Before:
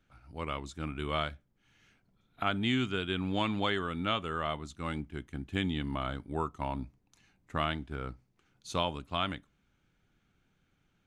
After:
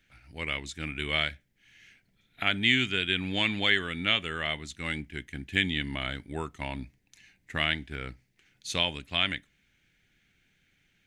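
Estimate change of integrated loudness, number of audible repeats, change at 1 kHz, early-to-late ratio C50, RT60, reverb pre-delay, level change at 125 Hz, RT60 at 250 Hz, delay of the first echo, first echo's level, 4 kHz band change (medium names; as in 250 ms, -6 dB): +5.5 dB, no echo, -3.5 dB, no reverb, no reverb, no reverb, 0.0 dB, no reverb, no echo, no echo, +9.5 dB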